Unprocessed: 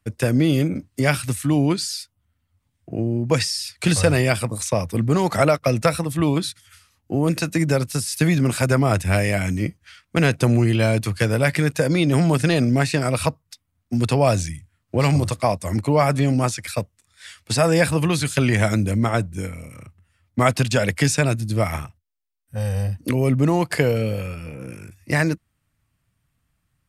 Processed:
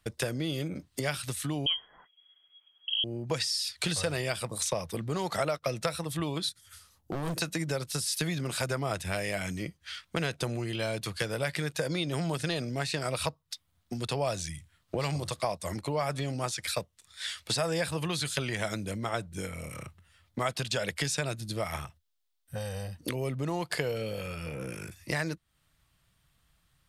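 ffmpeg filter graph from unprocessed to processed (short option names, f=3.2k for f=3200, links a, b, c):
-filter_complex "[0:a]asettb=1/sr,asplit=3[a][b][c];[a]atrim=end=1.664[d];[b]atrim=start=1.66:end=3.04,asetpts=PTS-STARTPTS,afade=t=in:d=0.004:c=qsin,afade=t=out:st=1.376:d=0.004:c=qsin,highpass=78,lowpass=f=2.9k:t=q:w=0.5098,lowpass=f=2.9k:t=q:w=0.6013,lowpass=f=2.9k:t=q:w=0.9,lowpass=f=2.9k:t=q:w=2.563,afreqshift=-3400[e];[c]atrim=start=3.036[f];[d][e]acrossfade=d=0.004:c1=hsin:c2=qsin[g];[g][f]acrossfade=d=0.004:c1=qsin:c2=hsin,asettb=1/sr,asplit=3[h][i][j];[h]atrim=end=6.494[k];[i]atrim=start=6.49:end=7.41,asetpts=PTS-STARTPTS,afade=t=in:d=0.004:c=qsin,afade=t=out:st=0.916:d=0.004:c=qsin,equalizer=f=2.8k:w=0.57:g=-11.5,asoftclip=type=hard:threshold=-24.5dB[l];[j]atrim=start=7.406[m];[k][l]acrossfade=d=0.004:c1=hsin:c2=qsin[n];[n][m]acrossfade=d=0.004:c1=qsin:c2=hsin,equalizer=f=3.5k:w=1.5:g=7.5,acompressor=threshold=-34dB:ratio=3,equalizer=f=100:t=o:w=0.67:g=-9,equalizer=f=250:t=o:w=0.67:g=-8,equalizer=f=2.5k:t=o:w=0.67:g=-4,volume=3.5dB"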